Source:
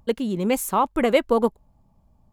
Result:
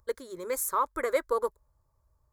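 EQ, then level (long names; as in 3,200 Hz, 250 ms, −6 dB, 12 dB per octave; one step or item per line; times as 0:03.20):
high-pass filter 76 Hz 6 dB per octave
parametric band 250 Hz −12.5 dB 1.9 octaves
phaser with its sweep stopped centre 760 Hz, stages 6
−1.0 dB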